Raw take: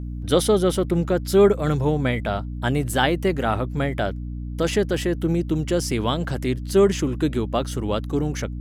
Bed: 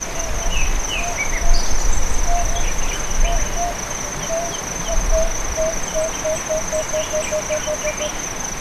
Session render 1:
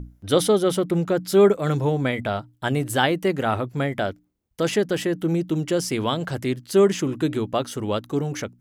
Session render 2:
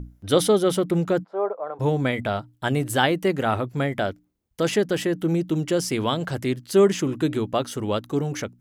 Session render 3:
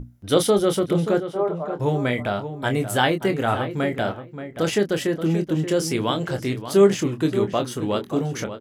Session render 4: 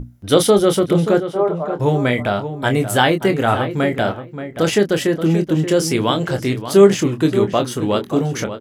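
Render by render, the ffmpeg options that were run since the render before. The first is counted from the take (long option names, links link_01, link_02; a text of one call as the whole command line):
ffmpeg -i in.wav -af "bandreject=frequency=60:width_type=h:width=6,bandreject=frequency=120:width_type=h:width=6,bandreject=frequency=180:width_type=h:width=6,bandreject=frequency=240:width_type=h:width=6,bandreject=frequency=300:width_type=h:width=6" out.wav
ffmpeg -i in.wav -filter_complex "[0:a]asplit=3[link_01][link_02][link_03];[link_01]afade=type=out:start_time=1.23:duration=0.02[link_04];[link_02]asuperpass=centerf=780:order=4:qfactor=1.4,afade=type=in:start_time=1.23:duration=0.02,afade=type=out:start_time=1.79:duration=0.02[link_05];[link_03]afade=type=in:start_time=1.79:duration=0.02[link_06];[link_04][link_05][link_06]amix=inputs=3:normalize=0" out.wav
ffmpeg -i in.wav -filter_complex "[0:a]asplit=2[link_01][link_02];[link_02]adelay=25,volume=-8dB[link_03];[link_01][link_03]amix=inputs=2:normalize=0,asplit=2[link_04][link_05];[link_05]adelay=579,lowpass=frequency=2300:poles=1,volume=-10dB,asplit=2[link_06][link_07];[link_07]adelay=579,lowpass=frequency=2300:poles=1,volume=0.18,asplit=2[link_08][link_09];[link_09]adelay=579,lowpass=frequency=2300:poles=1,volume=0.18[link_10];[link_04][link_06][link_08][link_10]amix=inputs=4:normalize=0" out.wav
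ffmpeg -i in.wav -af "volume=5.5dB,alimiter=limit=-1dB:level=0:latency=1" out.wav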